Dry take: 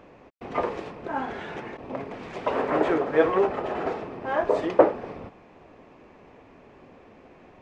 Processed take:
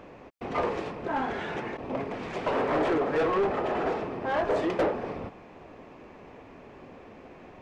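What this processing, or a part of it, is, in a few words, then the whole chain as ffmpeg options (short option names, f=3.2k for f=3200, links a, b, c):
saturation between pre-emphasis and de-emphasis: -af "highshelf=f=2.6k:g=11.5,asoftclip=type=tanh:threshold=-24dB,highshelf=f=2.6k:g=-11.5,volume=3dB"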